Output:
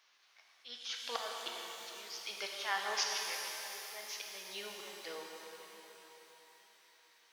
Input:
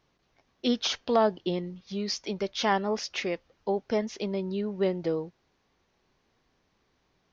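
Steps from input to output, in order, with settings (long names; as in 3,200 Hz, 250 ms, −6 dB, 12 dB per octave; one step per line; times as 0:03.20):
high-pass filter 1,500 Hz 12 dB per octave
volume swells 544 ms
reverb with rising layers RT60 3.8 s, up +12 semitones, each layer −8 dB, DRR −0.5 dB
level +6.5 dB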